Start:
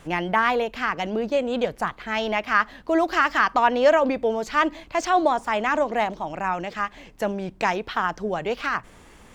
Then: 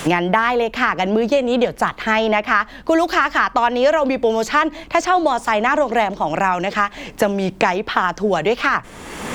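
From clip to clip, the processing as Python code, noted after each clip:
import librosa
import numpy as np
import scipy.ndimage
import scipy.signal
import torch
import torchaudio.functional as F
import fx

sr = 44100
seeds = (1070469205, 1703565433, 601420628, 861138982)

y = fx.band_squash(x, sr, depth_pct=100)
y = F.gain(torch.from_numpy(y), 5.0).numpy()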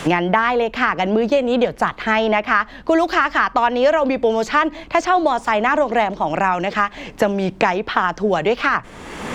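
y = fx.high_shelf(x, sr, hz=8100.0, db=-11.5)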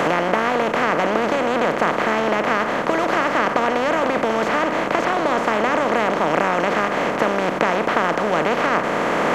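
y = fx.bin_compress(x, sr, power=0.2)
y = F.gain(torch.from_numpy(y), -11.5).numpy()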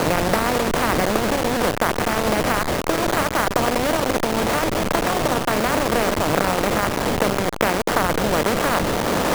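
y = fx.delta_hold(x, sr, step_db=-15.0)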